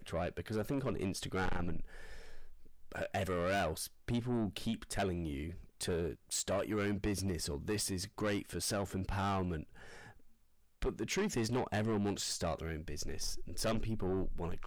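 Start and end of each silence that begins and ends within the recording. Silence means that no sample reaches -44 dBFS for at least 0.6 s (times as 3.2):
10.06–10.82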